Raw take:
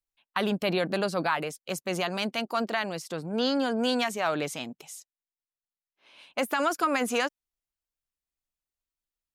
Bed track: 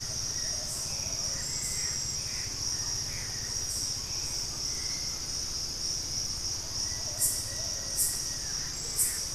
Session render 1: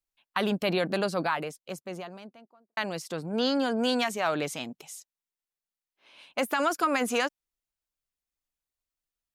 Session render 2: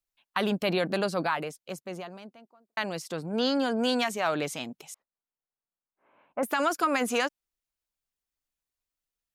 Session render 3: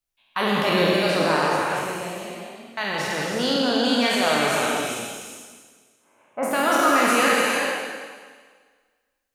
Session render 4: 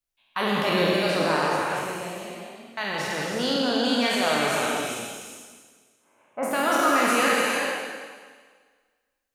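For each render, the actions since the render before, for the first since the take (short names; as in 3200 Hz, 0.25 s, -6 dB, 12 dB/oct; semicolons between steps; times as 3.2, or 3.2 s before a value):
0.98–2.77 studio fade out
4.94–6.43 LPF 1500 Hz 24 dB/oct
spectral trails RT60 1.61 s; non-linear reverb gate 0.45 s flat, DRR -2 dB
gain -2.5 dB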